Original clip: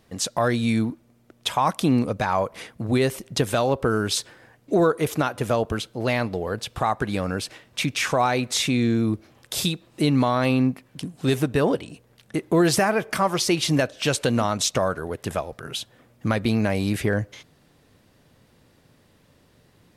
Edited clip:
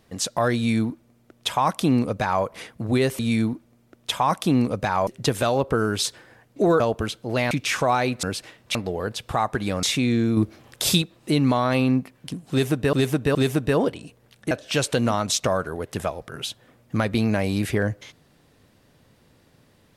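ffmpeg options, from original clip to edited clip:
-filter_complex "[0:a]asplit=13[a][b][c][d][e][f][g][h][i][j][k][l][m];[a]atrim=end=3.192[n];[b]atrim=start=0.558:end=2.442[o];[c]atrim=start=3.188:end=4.922[p];[d]atrim=start=5.508:end=6.222[q];[e]atrim=start=7.818:end=8.542[r];[f]atrim=start=7.298:end=7.822[s];[g]atrim=start=6.218:end=7.302[t];[h]atrim=start=8.538:end=9.082[u];[i]atrim=start=9.078:end=9.732,asetpts=PTS-STARTPTS,volume=4.5dB[v];[j]atrim=start=9.728:end=11.642[w];[k]atrim=start=11.218:end=11.642[x];[l]atrim=start=11.218:end=12.382[y];[m]atrim=start=13.818[z];[n][o]acrossfade=d=0.004:c1=hsin:c2=hsin[aa];[aa][p]acrossfade=d=0.004:c1=hsin:c2=hsin[ab];[ab][q]acrossfade=d=0.004:c1=hsin:c2=hsin[ac];[ac][r]acrossfade=d=0.004:c1=hsin:c2=hsin[ad];[ad][s]acrossfade=d=0.004:c1=hsin:c2=hsin[ae];[ae][t]acrossfade=d=0.004:c1=hsin:c2=hsin[af];[af][u]acrossfade=d=0.004:c1=hsin:c2=hsin[ag];[ag][v]acrossfade=d=0.004:c1=hsin:c2=hsin[ah];[ah][w]acrossfade=d=0.004:c1=hsin:c2=hsin[ai];[ai][x]acrossfade=d=0.004:c1=hsin:c2=hsin[aj];[aj][y]acrossfade=d=0.004:c1=hsin:c2=hsin[ak];[ak][z]acrossfade=d=0.004:c1=hsin:c2=hsin"

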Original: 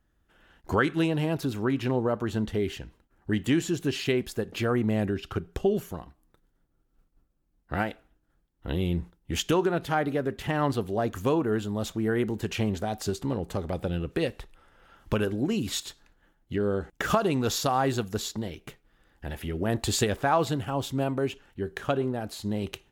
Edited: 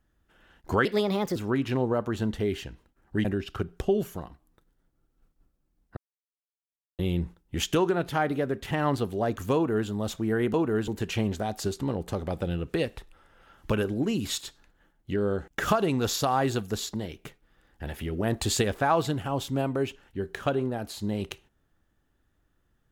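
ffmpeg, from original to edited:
-filter_complex "[0:a]asplit=8[a][b][c][d][e][f][g][h];[a]atrim=end=0.854[i];[b]atrim=start=0.85:end=1.5,asetpts=PTS-STARTPTS,asetrate=56448,aresample=44100[j];[c]atrim=start=1.496:end=3.392[k];[d]atrim=start=5.008:end=7.73,asetpts=PTS-STARTPTS,afade=t=out:st=2.718:d=0.004:c=hsin[l];[e]atrim=start=7.73:end=8.75,asetpts=PTS-STARTPTS,volume=0[m];[f]atrim=start=8.75:end=12.302,asetpts=PTS-STARTPTS,afade=t=in:d=0.004:c=hsin[n];[g]atrim=start=11.308:end=11.652[o];[h]atrim=start=12.298[p];[i][j]acrossfade=d=0.004:c1=hsin:c2=hsin[q];[q][k]acrossfade=d=0.004:c1=hsin:c2=hsin[r];[l][m][n]concat=n=3:v=0:a=1[s];[r][s]acrossfade=d=0.004:c1=hsin:c2=hsin[t];[t][o]acrossfade=d=0.004:c1=hsin:c2=hsin[u];[u][p]acrossfade=d=0.004:c1=hsin:c2=hsin"

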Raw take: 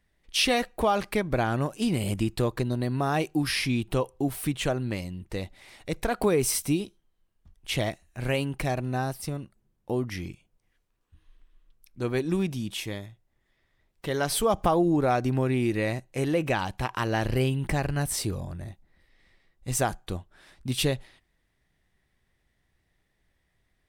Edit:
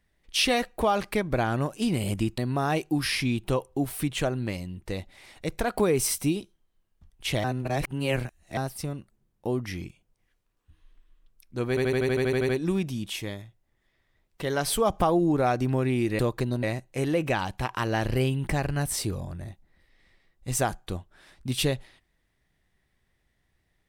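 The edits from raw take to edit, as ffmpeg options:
-filter_complex "[0:a]asplit=16[a][b][c][d][e][f][g][h][i][j][k][l][m][n][o][p];[a]atrim=end=2.382[q];[b]atrim=start=2.818:end=7.882[r];[c]atrim=start=7.878:end=9.012,asetpts=PTS-STARTPTS,areverse[s];[d]atrim=start=9.008:end=12.212[t];[e]atrim=start=12.128:end=12.212[u];[f]atrim=start=12.128:end=12.212[v];[g]atrim=start=12.128:end=12.212[w];[h]atrim=start=12.128:end=12.212[x];[i]atrim=start=12.128:end=12.212[y];[j]atrim=start=12.128:end=12.212[z];[k]atrim=start=12.128:end=12.212[aa];[l]atrim=start=12.128:end=12.212[ab];[m]atrim=start=12.128:end=12.212[ac];[n]atrim=start=12.128:end=15.832[ad];[o]atrim=start=2.378:end=2.822[ae];[p]atrim=start=15.828[af];[q][r]acrossfade=d=0.004:c1=hsin:c2=hsin[ag];[ag][s]acrossfade=d=0.004:c1=hsin:c2=hsin[ah];[ah][t]acrossfade=d=0.004:c1=hsin:c2=hsin[ai];[ai][u]acrossfade=d=0.004:c1=hsin:c2=hsin[aj];[aj][v]acrossfade=d=0.004:c1=hsin:c2=hsin[ak];[ak][w]acrossfade=d=0.004:c1=hsin:c2=hsin[al];[al][x]acrossfade=d=0.004:c1=hsin:c2=hsin[am];[am][y]acrossfade=d=0.004:c1=hsin:c2=hsin[an];[an][z]acrossfade=d=0.004:c1=hsin:c2=hsin[ao];[ao][aa]acrossfade=d=0.004:c1=hsin:c2=hsin[ap];[ap][ab]acrossfade=d=0.004:c1=hsin:c2=hsin[aq];[aq][ac]acrossfade=d=0.004:c1=hsin:c2=hsin[ar];[ar][ad]acrossfade=d=0.004:c1=hsin:c2=hsin[as];[as][ae]acrossfade=d=0.004:c1=hsin:c2=hsin[at];[at][af]acrossfade=d=0.004:c1=hsin:c2=hsin"

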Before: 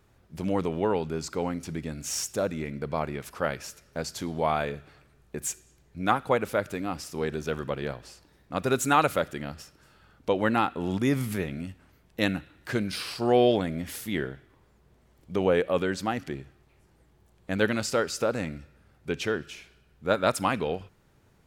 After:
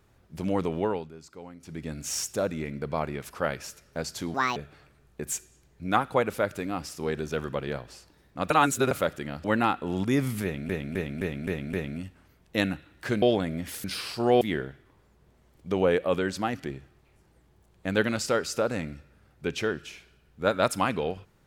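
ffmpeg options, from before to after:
-filter_complex "[0:a]asplit=16[a][b][c][d][e][f][g][h][i][j][k][l][m][n][o][p];[a]atrim=end=1.12,asetpts=PTS-STARTPTS,afade=t=out:st=0.8:d=0.32:silence=0.188365[q];[b]atrim=start=1.12:end=1.59,asetpts=PTS-STARTPTS,volume=-14.5dB[r];[c]atrim=start=1.59:end=4.344,asetpts=PTS-STARTPTS,afade=t=in:d=0.32:silence=0.188365[s];[d]atrim=start=4.34:end=4.71,asetpts=PTS-STARTPTS,asetrate=73647,aresample=44100[t];[e]atrim=start=4.706:end=8.652[u];[f]atrim=start=8.648:end=9.062,asetpts=PTS-STARTPTS,areverse[v];[g]atrim=start=9.058:end=9.592[w];[h]atrim=start=10.378:end=11.632[x];[i]atrim=start=11.368:end=11.632[y];[j]atrim=start=11.368:end=11.632[z];[k]atrim=start=11.368:end=11.632[aa];[l]atrim=start=11.368:end=11.632[ab];[m]atrim=start=11.368:end=12.862[ac];[n]atrim=start=13.428:end=14.052[ad];[o]atrim=start=12.858:end=13.432[ae];[p]atrim=start=14.048[af];[q][r][s]concat=n=3:v=0:a=1[ag];[ag][t]acrossfade=d=0.004:c1=hsin:c2=hsin[ah];[ah][u]acrossfade=d=0.004:c1=hsin:c2=hsin[ai];[ai][v]acrossfade=d=0.004:c1=hsin:c2=hsin[aj];[aj][w]acrossfade=d=0.004:c1=hsin:c2=hsin[ak];[ak][x]acrossfade=d=0.004:c1=hsin:c2=hsin[al];[al][y]acrossfade=d=0.004:c1=hsin:c2=hsin[am];[am][z]acrossfade=d=0.004:c1=hsin:c2=hsin[an];[an][aa]acrossfade=d=0.004:c1=hsin:c2=hsin[ao];[ao][ab]acrossfade=d=0.004:c1=hsin:c2=hsin[ap];[ap][ac]acrossfade=d=0.004:c1=hsin:c2=hsin[aq];[aq][ad]acrossfade=d=0.004:c1=hsin:c2=hsin[ar];[ar][ae]acrossfade=d=0.004:c1=hsin:c2=hsin[as];[as][af]acrossfade=d=0.004:c1=hsin:c2=hsin"

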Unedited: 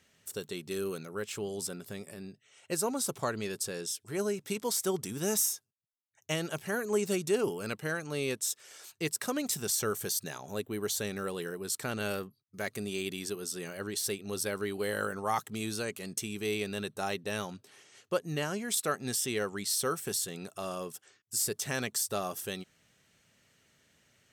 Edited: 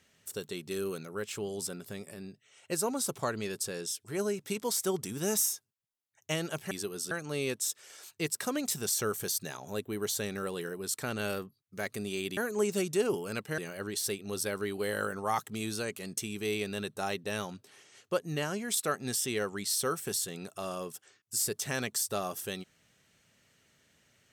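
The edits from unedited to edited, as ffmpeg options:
-filter_complex "[0:a]asplit=5[a][b][c][d][e];[a]atrim=end=6.712[f];[b]atrim=start=13.178:end=13.582[g];[c]atrim=start=7.918:end=13.182[h];[d]atrim=start=6.708:end=7.922[i];[e]atrim=start=13.578[j];[f][g]acrossfade=d=0.004:c1=hsin:c2=hsin[k];[k][h]acrossfade=d=0.004:c1=hsin:c2=hsin[l];[l][i]acrossfade=d=0.004:c1=hsin:c2=hsin[m];[m][j]acrossfade=d=0.004:c1=hsin:c2=hsin"

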